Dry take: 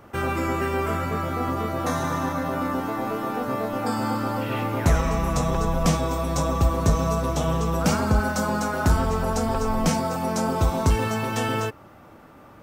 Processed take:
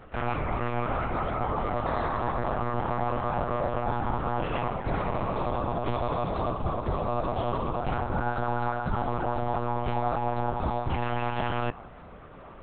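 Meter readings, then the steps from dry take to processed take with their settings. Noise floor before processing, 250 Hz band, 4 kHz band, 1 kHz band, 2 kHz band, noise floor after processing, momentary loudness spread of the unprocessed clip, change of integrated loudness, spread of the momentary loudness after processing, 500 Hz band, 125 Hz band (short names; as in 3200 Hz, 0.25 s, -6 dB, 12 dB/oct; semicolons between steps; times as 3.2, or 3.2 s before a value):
-48 dBFS, -8.5 dB, -9.5 dB, -1.5 dB, -6.0 dB, -46 dBFS, 5 LU, -5.0 dB, 2 LU, -4.0 dB, -7.0 dB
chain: reverse; compressor 6:1, threshold -29 dBFS, peak gain reduction 14.5 dB; reverse; dynamic EQ 770 Hz, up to +7 dB, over -51 dBFS, Q 1.7; monotone LPC vocoder at 8 kHz 120 Hz; gain +1.5 dB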